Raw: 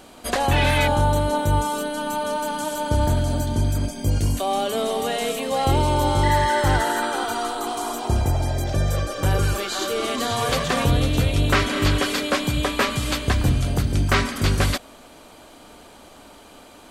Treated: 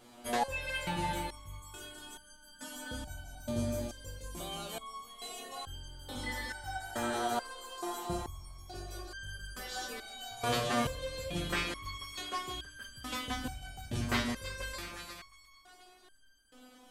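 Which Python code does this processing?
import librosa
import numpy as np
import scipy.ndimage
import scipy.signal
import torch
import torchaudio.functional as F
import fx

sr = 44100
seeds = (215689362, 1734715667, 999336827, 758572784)

y = fx.echo_split(x, sr, split_hz=980.0, low_ms=166, high_ms=356, feedback_pct=52, wet_db=-8.5)
y = fx.resonator_held(y, sr, hz=2.3, low_hz=120.0, high_hz=1600.0)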